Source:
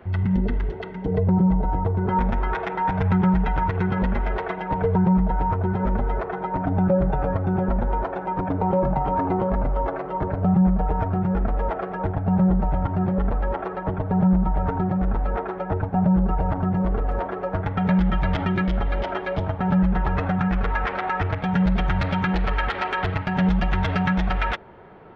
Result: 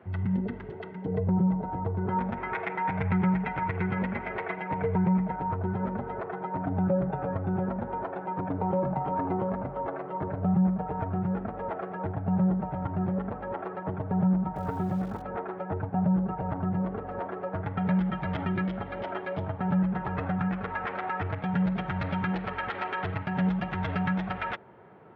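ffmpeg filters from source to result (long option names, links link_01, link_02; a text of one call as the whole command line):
ffmpeg -i in.wav -filter_complex "[0:a]asettb=1/sr,asplit=3[link_01][link_02][link_03];[link_01]atrim=end=2.374[link_04];[link_02]atrim=start=2.37:end=5.36,asetpts=PTS-STARTPTS,afade=type=in:duration=0.004:curve=qsin,afade=type=out:start_time=2.986:duration=0.004:curve=qsin,equalizer=frequency=2200:width_type=o:width=0.5:gain=10.5[link_05];[link_03]atrim=start=5.356[link_06];[link_04][link_05]acrossfade=duration=0.004:curve1=hsin:curve2=qsin[link_07];[link_07][link_06]acrossfade=duration=0.004:curve1=qsin:curve2=hsin,asettb=1/sr,asplit=3[link_08][link_09][link_10];[link_08]atrim=end=14.554[link_11];[link_09]atrim=start=14.55:end=15.22,asetpts=PTS-STARTPTS,afade=type=in:duration=0.004:curve=qsin,afade=type=out:start_time=0.666:duration=0.004:curve=qsin,acrusher=bits=8:dc=4:mix=0:aa=0.000001[link_12];[link_10]atrim=start=15.216[link_13];[link_11][link_12]acrossfade=duration=0.004:curve1=hsin:curve2=qsin[link_14];[link_14][link_13]acrossfade=duration=0.004:curve1=qsin:curve2=hsin,highpass=frequency=90:width=0.5412,highpass=frequency=90:width=1.3066,bass=frequency=250:gain=1,treble=frequency=4000:gain=-11,volume=-6.5dB" out.wav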